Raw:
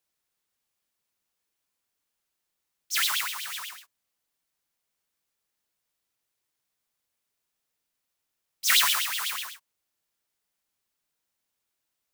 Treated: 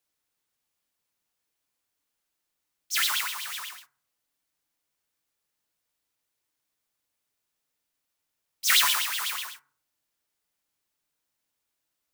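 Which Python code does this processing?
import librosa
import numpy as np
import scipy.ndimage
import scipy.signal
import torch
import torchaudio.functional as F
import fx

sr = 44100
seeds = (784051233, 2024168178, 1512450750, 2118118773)

y = fx.rev_fdn(x, sr, rt60_s=0.47, lf_ratio=1.45, hf_ratio=0.35, size_ms=20.0, drr_db=11.5)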